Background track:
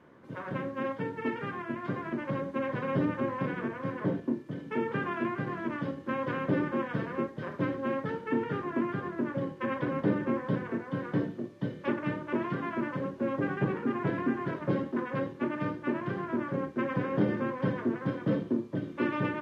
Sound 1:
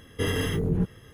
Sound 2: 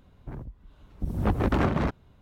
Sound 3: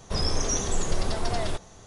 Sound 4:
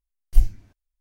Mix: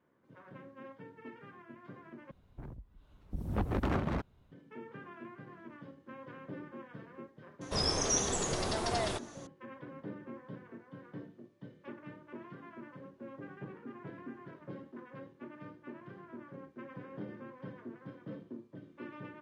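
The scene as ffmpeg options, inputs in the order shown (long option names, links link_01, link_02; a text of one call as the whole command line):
ffmpeg -i bed.wav -i cue0.wav -i cue1.wav -i cue2.wav -filter_complex "[0:a]volume=-16.5dB[link_01];[3:a]highpass=frequency=150:poles=1[link_02];[link_01]asplit=2[link_03][link_04];[link_03]atrim=end=2.314[link_05];[2:a]atrim=end=2.21,asetpts=PTS-STARTPTS,volume=-8dB[link_06];[link_04]atrim=start=4.516[link_07];[link_02]atrim=end=1.86,asetpts=PTS-STARTPTS,volume=-2dB,afade=type=in:duration=0.004:curve=hsin,afade=type=out:start_time=1.856:duration=0.004:curve=hsin,adelay=7610[link_08];[link_05][link_06]acrossfade=duration=0.004:curve1=hsin:curve2=hsin[link_09];[link_09][link_07]acrossfade=duration=0.004:curve1=hsin:curve2=hsin[link_10];[link_10][link_08]amix=inputs=2:normalize=0" out.wav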